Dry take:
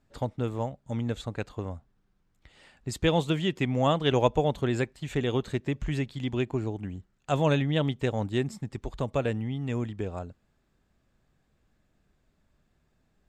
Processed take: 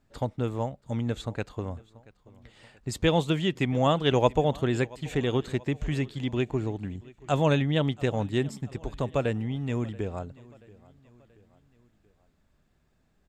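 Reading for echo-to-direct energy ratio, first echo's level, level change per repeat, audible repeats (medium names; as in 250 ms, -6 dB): -21.5 dB, -22.5 dB, -6.0 dB, 3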